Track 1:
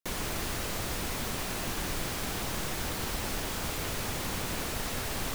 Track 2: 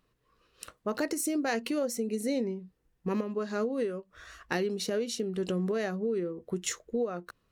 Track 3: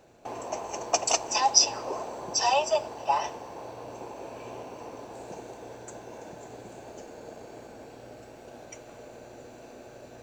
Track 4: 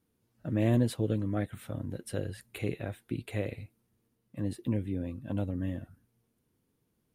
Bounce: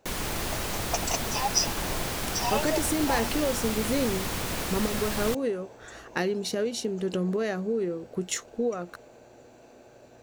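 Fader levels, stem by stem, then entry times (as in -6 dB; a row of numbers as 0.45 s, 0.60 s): +2.5 dB, +2.5 dB, -5.5 dB, mute; 0.00 s, 1.65 s, 0.00 s, mute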